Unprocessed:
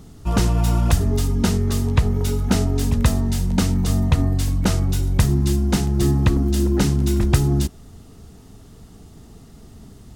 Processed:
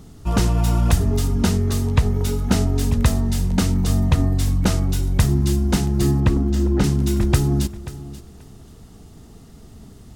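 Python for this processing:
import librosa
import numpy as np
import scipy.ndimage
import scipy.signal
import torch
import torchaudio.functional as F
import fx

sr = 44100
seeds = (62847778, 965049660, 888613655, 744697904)

p1 = fx.lowpass(x, sr, hz=2800.0, slope=6, at=(6.2, 6.84))
y = p1 + fx.echo_feedback(p1, sr, ms=534, feedback_pct=18, wet_db=-16, dry=0)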